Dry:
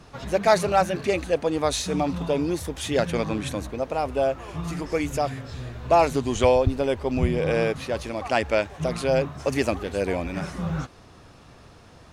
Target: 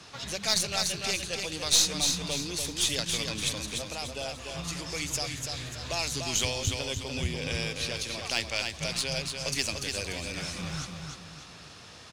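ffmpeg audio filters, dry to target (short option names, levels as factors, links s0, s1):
-filter_complex "[0:a]highpass=74,equalizer=f=4800:w=0.34:g=14.5,acrossover=split=160|3000[s0][s1][s2];[s1]acompressor=threshold=0.0126:ratio=2.5[s3];[s0][s3][s2]amix=inputs=3:normalize=0,aeval=exprs='0.75*(cos(1*acos(clip(val(0)/0.75,-1,1)))-cos(1*PI/2))+0.0473*(cos(6*acos(clip(val(0)/0.75,-1,1)))-cos(6*PI/2))':c=same,asplit=2[s4][s5];[s5]aecho=0:1:293|586|879|1172|1465:0.562|0.219|0.0855|0.0334|0.013[s6];[s4][s6]amix=inputs=2:normalize=0,volume=0.531"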